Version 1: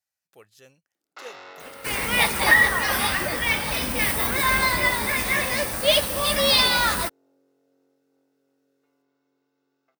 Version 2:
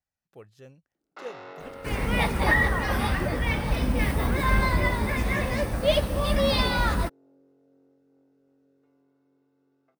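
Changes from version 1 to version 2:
second sound -3.5 dB; master: add tilt EQ -3.5 dB/octave

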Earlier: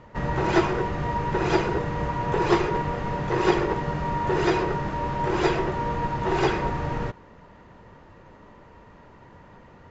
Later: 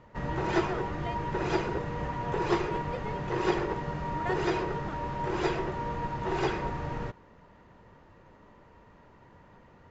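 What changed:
speech +7.0 dB; background -6.5 dB

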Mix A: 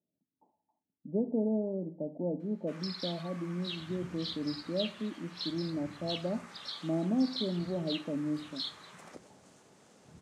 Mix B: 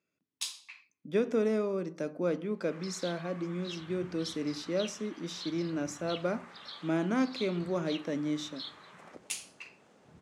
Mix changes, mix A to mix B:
speech: remove rippled Chebyshev low-pass 900 Hz, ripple 6 dB; master: add tone controls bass -3 dB, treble -10 dB

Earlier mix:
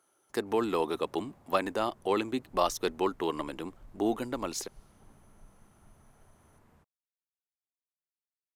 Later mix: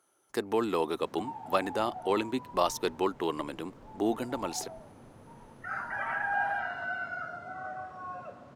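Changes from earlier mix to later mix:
first sound -5.5 dB; second sound: unmuted

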